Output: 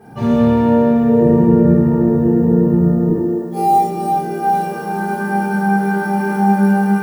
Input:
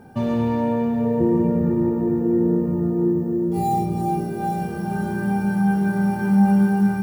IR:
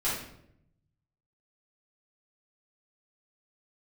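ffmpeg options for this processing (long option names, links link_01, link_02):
-filter_complex "[0:a]asetnsamples=nb_out_samples=441:pad=0,asendcmd='3.09 highpass f 360',highpass=49[link_01];[1:a]atrim=start_sample=2205,afade=type=out:start_time=0.41:duration=0.01,atrim=end_sample=18522[link_02];[link_01][link_02]afir=irnorm=-1:irlink=0"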